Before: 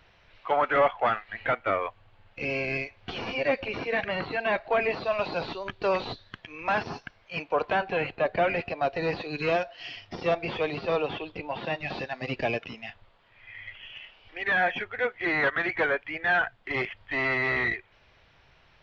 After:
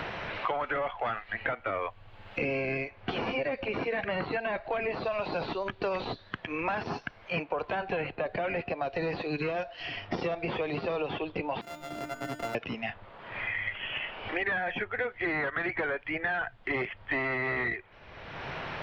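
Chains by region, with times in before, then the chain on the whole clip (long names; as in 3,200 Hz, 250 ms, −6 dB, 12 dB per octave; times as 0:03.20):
0:11.61–0:12.55: samples sorted by size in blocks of 64 samples + mains-hum notches 50/100/150/200 Hz + tuned comb filter 300 Hz, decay 0.54 s, mix 90%
whole clip: high-shelf EQ 4,100 Hz −11.5 dB; brickwall limiter −22.5 dBFS; multiband upward and downward compressor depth 100%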